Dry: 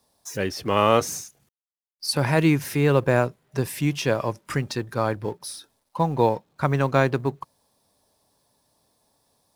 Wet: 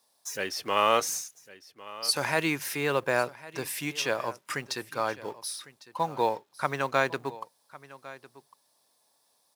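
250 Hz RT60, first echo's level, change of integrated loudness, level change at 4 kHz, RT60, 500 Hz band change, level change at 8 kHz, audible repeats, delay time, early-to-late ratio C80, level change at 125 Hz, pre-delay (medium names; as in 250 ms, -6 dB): no reverb, -18.5 dB, -6.0 dB, 0.0 dB, no reverb, -7.0 dB, 0.0 dB, 1, 1103 ms, no reverb, -17.0 dB, no reverb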